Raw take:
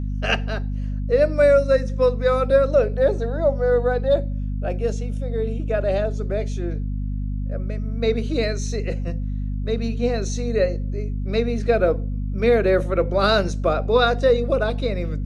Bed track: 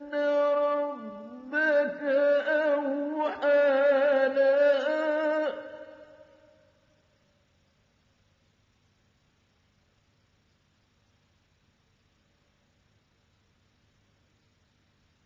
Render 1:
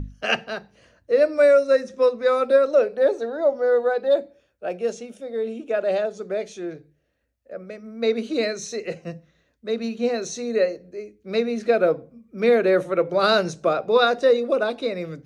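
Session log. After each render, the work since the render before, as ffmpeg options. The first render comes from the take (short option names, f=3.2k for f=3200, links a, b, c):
-af "bandreject=f=50:t=h:w=6,bandreject=f=100:t=h:w=6,bandreject=f=150:t=h:w=6,bandreject=f=200:t=h:w=6,bandreject=f=250:t=h:w=6"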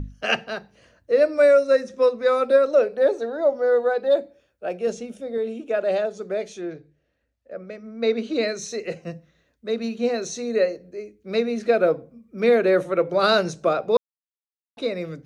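-filter_complex "[0:a]asettb=1/sr,asplit=3[a][b][c];[a]atrim=end=4.874[d];[b]atrim=start=4.87:end=5.38,asetpts=PTS-STARTPTS,afade=t=in:d=0.004:c=qsin,afade=t=out:st=0.506:d=0.004:c=qsin,lowshelf=f=230:g=8.5[e];[c]atrim=start=5.376[f];[d][e]acrossfade=d=0.004:c1=hsin:c2=qsin[g];[g][f]acrossfade=d=0.004:c1=qsin:c2=hsin,asettb=1/sr,asplit=3[h][i][j];[h]atrim=end=6.614[k];[i]atrim=start=6.61:end=8.48,asetpts=PTS-STARTPTS,afade=t=in:d=0.004:c=qsin,afade=t=out:st=1.866:d=0.004:c=qsin,lowpass=6.1k[l];[j]atrim=start=8.476[m];[k][l]acrossfade=d=0.004:c1=hsin:c2=qsin[n];[n][m]acrossfade=d=0.004:c1=qsin:c2=hsin,asplit=3[o][p][q];[o]atrim=end=13.97,asetpts=PTS-STARTPTS,afade=t=out:st=13.966:d=0.004:c=hsin[r];[p]atrim=start=13.97:end=14.77,asetpts=PTS-STARTPTS,volume=0[s];[q]atrim=start=14.77,asetpts=PTS-STARTPTS,afade=t=in:d=0.004:c=hsin[t];[r][s][t]concat=n=3:v=0:a=1"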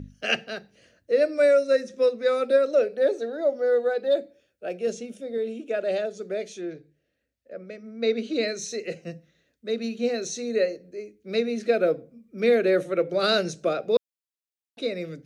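-af "highpass=f=180:p=1,equalizer=f=980:t=o:w=0.8:g=-13.5"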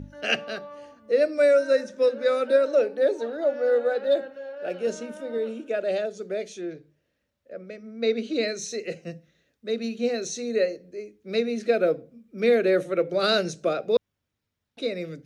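-filter_complex "[1:a]volume=-15dB[a];[0:a][a]amix=inputs=2:normalize=0"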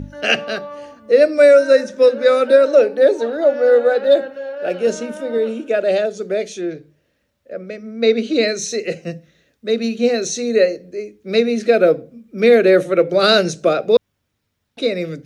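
-af "volume=9.5dB,alimiter=limit=-2dB:level=0:latency=1"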